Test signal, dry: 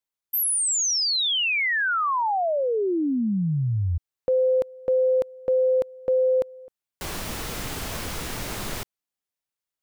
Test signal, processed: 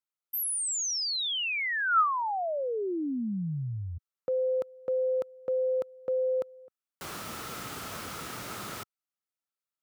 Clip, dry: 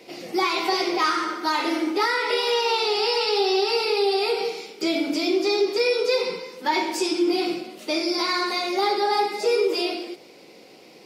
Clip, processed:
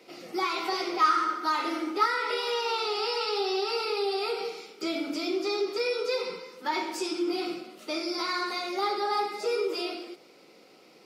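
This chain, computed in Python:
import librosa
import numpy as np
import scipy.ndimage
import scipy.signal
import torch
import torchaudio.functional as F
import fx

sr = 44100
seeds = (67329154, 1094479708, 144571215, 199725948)

y = scipy.signal.sosfilt(scipy.signal.butter(2, 110.0, 'highpass', fs=sr, output='sos'), x)
y = fx.peak_eq(y, sr, hz=1300.0, db=11.0, octaves=0.24)
y = y * 10.0 ** (-7.5 / 20.0)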